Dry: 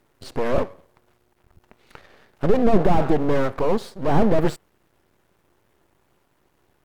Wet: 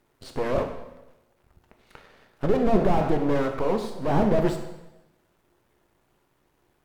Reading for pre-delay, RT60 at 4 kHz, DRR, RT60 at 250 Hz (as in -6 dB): 6 ms, 0.90 s, 5.0 dB, 1.0 s